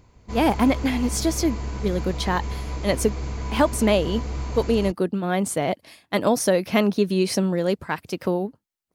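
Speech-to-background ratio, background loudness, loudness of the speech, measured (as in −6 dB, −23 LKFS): 8.0 dB, −31.5 LKFS, −23.5 LKFS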